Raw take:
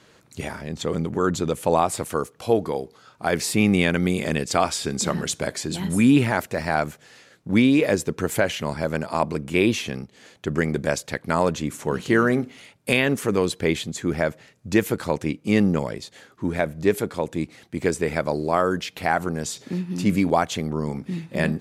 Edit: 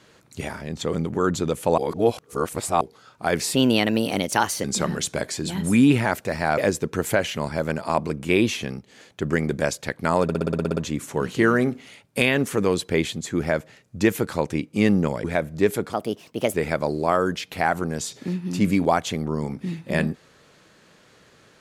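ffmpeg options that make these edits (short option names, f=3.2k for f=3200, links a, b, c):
-filter_complex "[0:a]asplit=18[a][b][c][d][e][f][g][h][i][j][k][l][m][n][o][p][q][r];[a]atrim=end=1.782[s];[b]atrim=start=1.778:end=2.812,asetpts=PTS-STARTPTS,areverse[t];[c]atrim=start=2.808:end=3.554[u];[d]atrim=start=3.55:end=4.9,asetpts=PTS-STARTPTS,asetrate=54684,aresample=44100,atrim=end_sample=48012,asetpts=PTS-STARTPTS[v];[e]atrim=start=4.896:end=6.842[w];[f]atrim=start=7.828:end=11.542[x];[g]atrim=start=11.478:end=11.542[y];[h]atrim=start=11.478:end=11.542[z];[i]atrim=start=11.478:end=11.542[aa];[j]atrim=start=11.478:end=11.542[ab];[k]atrim=start=11.478:end=11.542[ac];[l]atrim=start=11.478:end=11.542[ad];[m]atrim=start=11.478:end=11.542[ae];[n]atrim=start=11.478:end=11.542[af];[o]atrim=start=11.478:end=15.952[ag];[p]atrim=start=16.478:end=17.174[ah];[q]atrim=start=17.17:end=17.99,asetpts=PTS-STARTPTS,asetrate=59094,aresample=44100[ai];[r]atrim=start=17.986[aj];[s][t]acrossfade=d=0.004:c1=hsin:c2=hsin[ak];[ak][u]acrossfade=d=0.004:c1=hsin:c2=hsin[al];[al][v]acrossfade=d=0.004:c1=hsin:c2=hsin[am];[am][w]acrossfade=d=0.004:c1=hsin:c2=hsin[an];[an][x]acrossfade=d=0.004:c1=hsin:c2=hsin[ao];[ao][y]acrossfade=d=0.004:c1=hsin:c2=hsin[ap];[ap][z]acrossfade=d=0.004:c1=hsin:c2=hsin[aq];[aq][aa]acrossfade=d=0.004:c1=hsin:c2=hsin[ar];[ar][ab]acrossfade=d=0.004:c1=hsin:c2=hsin[as];[as][ac]acrossfade=d=0.004:c1=hsin:c2=hsin[at];[at][ad]acrossfade=d=0.004:c1=hsin:c2=hsin[au];[au][ae]acrossfade=d=0.004:c1=hsin:c2=hsin[av];[av][af]acrossfade=d=0.004:c1=hsin:c2=hsin[aw];[aw][ag]acrossfade=d=0.004:c1=hsin:c2=hsin[ax];[ax][ah]acrossfade=d=0.004:c1=hsin:c2=hsin[ay];[ay][ai]acrossfade=d=0.004:c1=hsin:c2=hsin[az];[az][aj]acrossfade=d=0.004:c1=hsin:c2=hsin"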